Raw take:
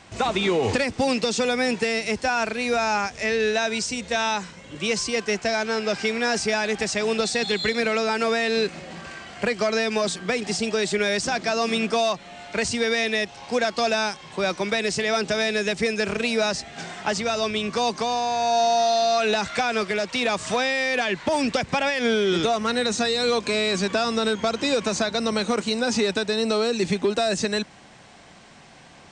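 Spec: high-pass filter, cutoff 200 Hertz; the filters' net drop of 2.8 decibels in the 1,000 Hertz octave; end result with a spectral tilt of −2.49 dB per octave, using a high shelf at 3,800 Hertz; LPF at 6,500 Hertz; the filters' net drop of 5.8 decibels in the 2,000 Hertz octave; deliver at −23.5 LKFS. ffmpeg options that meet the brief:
ffmpeg -i in.wav -af "highpass=200,lowpass=6500,equalizer=frequency=1000:width_type=o:gain=-3,equalizer=frequency=2000:width_type=o:gain=-8.5,highshelf=frequency=3800:gain=6,volume=1.5dB" out.wav

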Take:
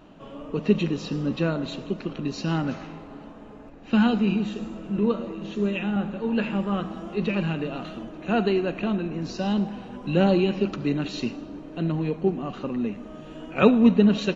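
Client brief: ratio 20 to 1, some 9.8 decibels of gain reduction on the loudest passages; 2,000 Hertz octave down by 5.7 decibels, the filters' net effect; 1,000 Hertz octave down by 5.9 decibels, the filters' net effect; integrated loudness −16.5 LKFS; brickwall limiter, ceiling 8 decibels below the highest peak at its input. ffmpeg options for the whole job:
ffmpeg -i in.wav -af "equalizer=frequency=1000:width_type=o:gain=-7,equalizer=frequency=2000:width_type=o:gain=-6.5,acompressor=threshold=-22dB:ratio=20,volume=15dB,alimiter=limit=-6.5dB:level=0:latency=1" out.wav

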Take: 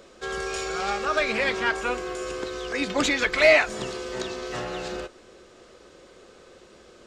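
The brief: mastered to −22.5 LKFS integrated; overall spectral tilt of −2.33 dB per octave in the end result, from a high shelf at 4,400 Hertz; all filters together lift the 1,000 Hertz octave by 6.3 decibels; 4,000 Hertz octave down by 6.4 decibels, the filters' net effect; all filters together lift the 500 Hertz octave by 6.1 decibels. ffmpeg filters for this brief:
ffmpeg -i in.wav -af "equalizer=frequency=500:width_type=o:gain=5.5,equalizer=frequency=1000:width_type=o:gain=7.5,equalizer=frequency=4000:width_type=o:gain=-6,highshelf=frequency=4400:gain=-5.5,volume=-1dB" out.wav

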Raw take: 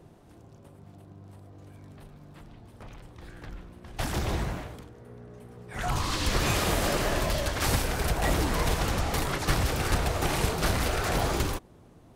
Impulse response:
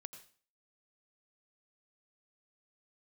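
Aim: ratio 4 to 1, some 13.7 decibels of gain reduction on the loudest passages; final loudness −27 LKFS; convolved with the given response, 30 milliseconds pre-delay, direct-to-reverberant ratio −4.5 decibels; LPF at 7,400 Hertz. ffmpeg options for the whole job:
-filter_complex "[0:a]lowpass=7400,acompressor=threshold=-38dB:ratio=4,asplit=2[link_01][link_02];[1:a]atrim=start_sample=2205,adelay=30[link_03];[link_02][link_03]afir=irnorm=-1:irlink=0,volume=9.5dB[link_04];[link_01][link_04]amix=inputs=2:normalize=0,volume=9dB"

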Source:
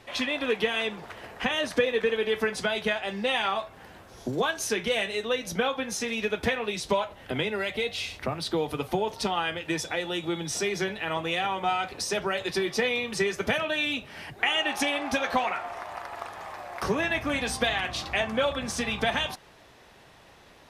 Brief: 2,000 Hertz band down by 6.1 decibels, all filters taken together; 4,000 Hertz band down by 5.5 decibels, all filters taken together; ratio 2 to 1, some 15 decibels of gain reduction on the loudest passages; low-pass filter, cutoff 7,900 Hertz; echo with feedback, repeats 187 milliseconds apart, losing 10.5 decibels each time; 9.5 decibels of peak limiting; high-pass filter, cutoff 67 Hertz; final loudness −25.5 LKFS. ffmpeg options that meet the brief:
ffmpeg -i in.wav -af "highpass=67,lowpass=7900,equalizer=frequency=2000:width_type=o:gain=-6.5,equalizer=frequency=4000:width_type=o:gain=-4.5,acompressor=threshold=-50dB:ratio=2,alimiter=level_in=10.5dB:limit=-24dB:level=0:latency=1,volume=-10.5dB,aecho=1:1:187|374|561:0.299|0.0896|0.0269,volume=19dB" out.wav

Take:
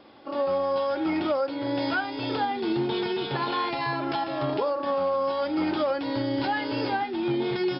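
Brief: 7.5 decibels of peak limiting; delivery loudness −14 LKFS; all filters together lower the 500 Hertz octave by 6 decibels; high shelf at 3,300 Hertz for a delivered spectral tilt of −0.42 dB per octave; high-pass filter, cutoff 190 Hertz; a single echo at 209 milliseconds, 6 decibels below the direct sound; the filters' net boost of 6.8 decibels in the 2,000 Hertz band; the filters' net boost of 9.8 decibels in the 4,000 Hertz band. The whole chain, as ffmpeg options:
ffmpeg -i in.wav -af "highpass=190,equalizer=frequency=500:width_type=o:gain=-8,equalizer=frequency=2000:width_type=o:gain=6.5,highshelf=frequency=3300:gain=6,equalizer=frequency=4000:width_type=o:gain=6,alimiter=limit=-20.5dB:level=0:latency=1,aecho=1:1:209:0.501,volume=14dB" out.wav

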